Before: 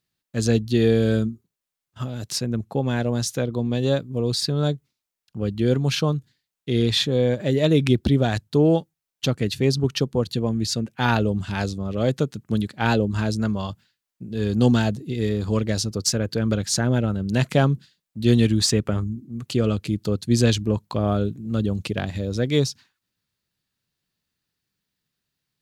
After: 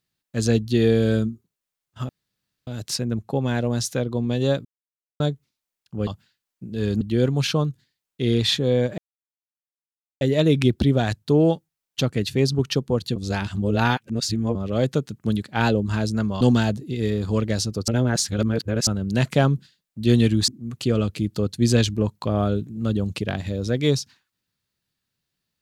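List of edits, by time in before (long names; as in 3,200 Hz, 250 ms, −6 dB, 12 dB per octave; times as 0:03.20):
0:02.09: splice in room tone 0.58 s
0:04.07–0:04.62: silence
0:07.46: splice in silence 1.23 s
0:10.41–0:11.80: reverse
0:13.66–0:14.60: move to 0:05.49
0:16.07–0:17.06: reverse
0:18.67–0:19.17: remove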